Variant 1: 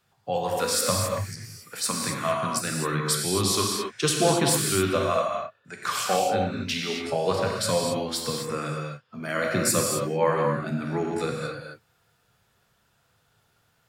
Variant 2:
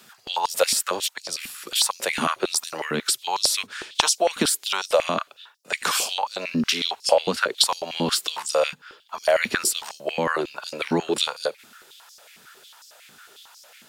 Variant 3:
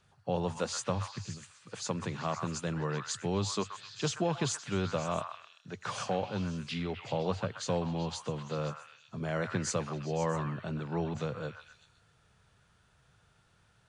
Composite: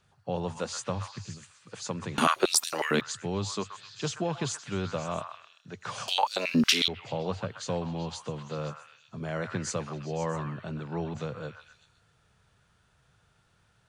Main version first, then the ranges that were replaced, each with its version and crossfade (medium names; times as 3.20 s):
3
2.18–3.01 s: from 2
6.08–6.88 s: from 2
not used: 1